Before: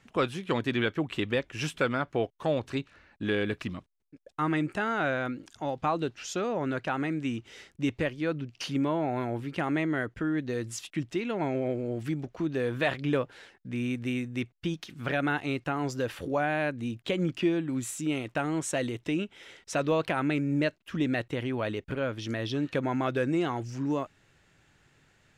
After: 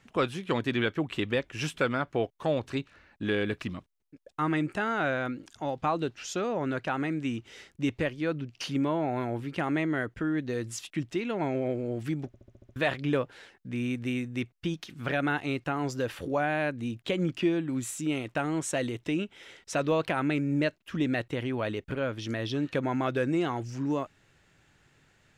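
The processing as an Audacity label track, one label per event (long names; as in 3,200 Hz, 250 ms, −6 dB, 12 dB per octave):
12.270000	12.270000	stutter in place 0.07 s, 7 plays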